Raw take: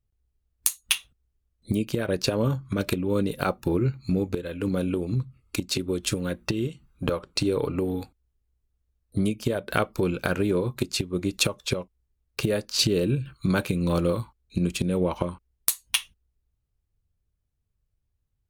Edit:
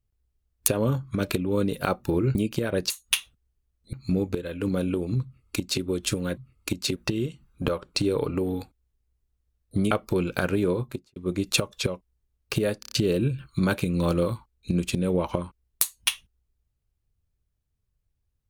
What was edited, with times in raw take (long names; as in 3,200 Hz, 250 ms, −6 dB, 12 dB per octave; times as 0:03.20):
0:00.68–0:01.71: swap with 0:02.26–0:03.93
0:05.24–0:05.83: duplicate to 0:06.37
0:09.32–0:09.78: remove
0:10.60–0:11.03: fade out and dull
0:12.67: stutter in place 0.03 s, 5 plays